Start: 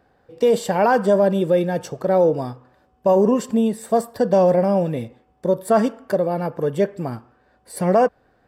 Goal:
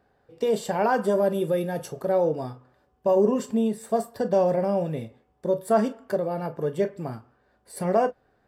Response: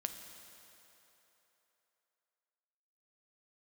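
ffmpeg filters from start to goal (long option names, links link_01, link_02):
-filter_complex "[0:a]asettb=1/sr,asplit=3[link_01][link_02][link_03];[link_01]atrim=end=1.014[link_04];[link_02]atrim=start=1.01:end=2.12,asetpts=PTS-STARTPTS,afade=type=in:duration=0.004:curve=qsin,afade=type=out:start_time=1.106:duration=0.004:curve=qsin,equalizer=frequency=11000:width=2.3:gain=13.5[link_05];[link_03]atrim=start=2.116[link_06];[link_04][link_05]acrossfade=duration=0.004:curve1=hsin:curve2=qsin[link_07];[link_07][link_06]acrossfade=duration=0.004:curve1=qsin:curve2=hsin[link_08];[1:a]atrim=start_sample=2205,atrim=end_sample=4410,asetrate=88200,aresample=44100[link_09];[link_08][link_09]afir=irnorm=-1:irlink=0,volume=1.5dB"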